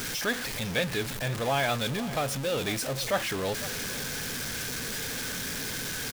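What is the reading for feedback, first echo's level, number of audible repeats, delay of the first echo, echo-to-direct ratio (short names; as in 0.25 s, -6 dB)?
no steady repeat, -15.5 dB, 1, 0.504 s, -15.5 dB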